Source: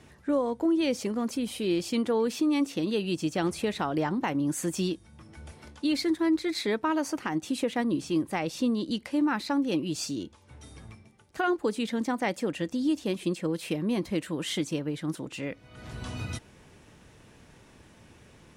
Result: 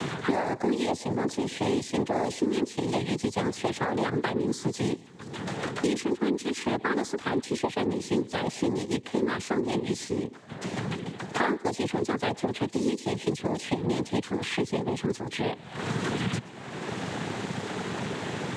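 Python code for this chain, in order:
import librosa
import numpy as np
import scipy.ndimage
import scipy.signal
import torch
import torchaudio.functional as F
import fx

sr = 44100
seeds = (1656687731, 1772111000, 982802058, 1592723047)

y = x + 10.0 ** (-22.5 / 20.0) * np.pad(x, (int(121 * sr / 1000.0), 0))[:len(x)]
y = fx.noise_vocoder(y, sr, seeds[0], bands=6)
y = fx.band_squash(y, sr, depth_pct=100)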